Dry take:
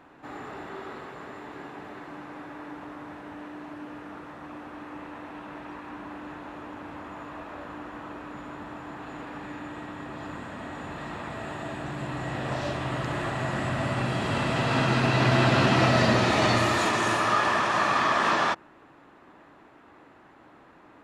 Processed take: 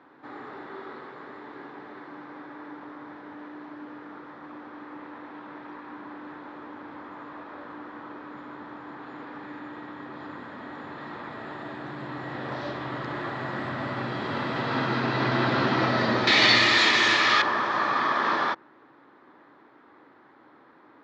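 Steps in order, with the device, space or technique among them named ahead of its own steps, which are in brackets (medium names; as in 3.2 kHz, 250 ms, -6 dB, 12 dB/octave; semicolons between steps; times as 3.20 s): kitchen radio (cabinet simulation 170–4500 Hz, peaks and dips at 180 Hz -6 dB, 670 Hz -6 dB, 2.7 kHz -10 dB); 16.27–17.42 s: high-order bell 4.2 kHz +15 dB 2.6 oct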